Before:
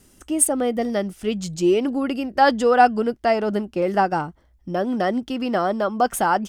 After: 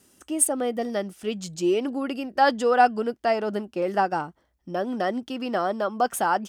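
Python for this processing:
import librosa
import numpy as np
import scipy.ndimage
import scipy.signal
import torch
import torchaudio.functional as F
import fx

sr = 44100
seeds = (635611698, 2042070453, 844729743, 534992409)

y = fx.highpass(x, sr, hz=240.0, slope=6)
y = fx.notch(y, sr, hz=2100.0, q=24.0)
y = F.gain(torch.from_numpy(y), -3.0).numpy()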